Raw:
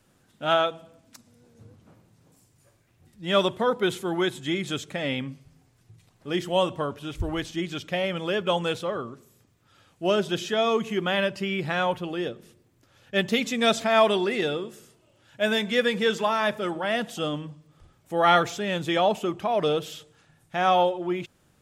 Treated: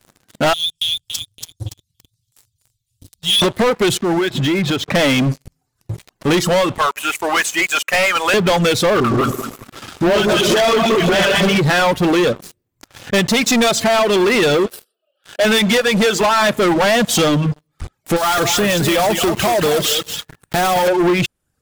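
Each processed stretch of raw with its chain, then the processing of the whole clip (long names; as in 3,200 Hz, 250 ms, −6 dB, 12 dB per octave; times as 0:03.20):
0:00.53–0:03.42: elliptic band-stop filter 100–3,700 Hz, stop band 50 dB + parametric band 130 Hz +5 dB 0.26 octaves + feedback echo with a high-pass in the loop 283 ms, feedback 40%, high-pass 160 Hz, level −6 dB
0:03.97–0:04.95: downward compressor 20 to 1, threshold −35 dBFS + high-frequency loss of the air 190 metres
0:06.78–0:08.34: high-pass filter 1,000 Hz + flat-topped bell 4,300 Hz −12.5 dB 1 octave
0:09.00–0:11.58: feedback delay that plays each chunk backwards 102 ms, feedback 55%, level −1 dB + all-pass dispersion highs, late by 65 ms, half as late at 1,000 Hz + delay that swaps between a low-pass and a high-pass 111 ms, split 1,500 Hz, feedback 73%, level −11.5 dB
0:14.66–0:15.45: linear-phase brick-wall high-pass 220 Hz + phaser with its sweep stopped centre 1,400 Hz, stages 8
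0:18.16–0:20.88: one scale factor per block 3 bits + downward compressor 5 to 1, threshold −36 dBFS + single-tap delay 219 ms −7 dB
whole clip: downward compressor 16 to 1, threshold −29 dBFS; reverb reduction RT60 0.97 s; leveller curve on the samples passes 5; level +9 dB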